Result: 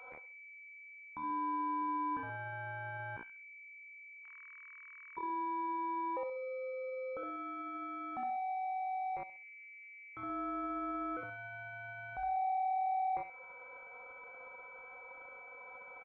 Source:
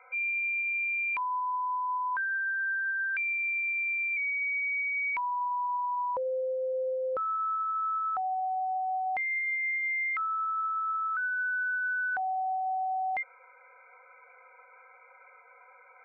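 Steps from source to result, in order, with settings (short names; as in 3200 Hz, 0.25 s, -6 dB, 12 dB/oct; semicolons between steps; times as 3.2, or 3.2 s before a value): 1.31–1.82 low shelf 290 Hz -10.5 dB; compressor 20:1, threshold -41 dBFS, peak gain reduction 12.5 dB; feedback echo 65 ms, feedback 31%, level -4 dB; pulse-width modulation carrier 2300 Hz; gain +4.5 dB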